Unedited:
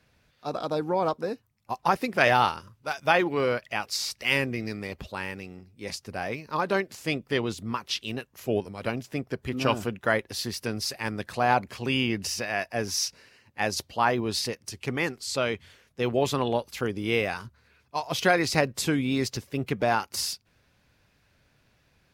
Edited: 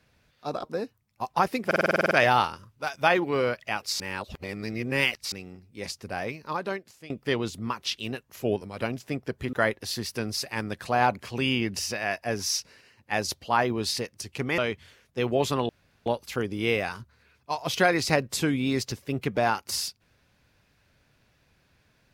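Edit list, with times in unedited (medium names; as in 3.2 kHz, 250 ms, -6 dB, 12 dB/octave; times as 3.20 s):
0.63–1.12 s: delete
2.15 s: stutter 0.05 s, 10 plays
4.04–5.36 s: reverse
6.28–7.14 s: fade out, to -21 dB
9.57–10.01 s: delete
15.06–15.40 s: delete
16.51 s: insert room tone 0.37 s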